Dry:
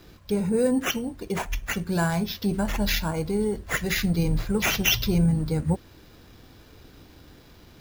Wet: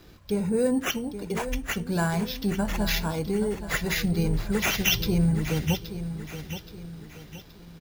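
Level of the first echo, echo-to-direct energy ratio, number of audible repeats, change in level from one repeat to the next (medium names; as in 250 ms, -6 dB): -11.0 dB, -10.0 dB, 4, -7.5 dB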